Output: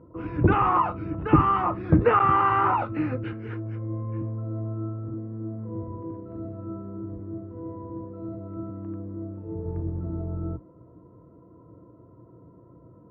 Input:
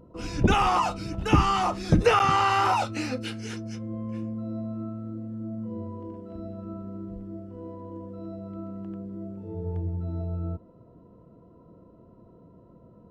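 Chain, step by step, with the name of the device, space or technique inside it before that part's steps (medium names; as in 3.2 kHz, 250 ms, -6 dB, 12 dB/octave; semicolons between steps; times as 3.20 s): sub-octave bass pedal (octave divider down 1 oct, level -3 dB; cabinet simulation 75–2000 Hz, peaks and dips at 120 Hz +4 dB, 220 Hz -7 dB, 310 Hz +7 dB, 750 Hz -4 dB, 1.1 kHz +5 dB)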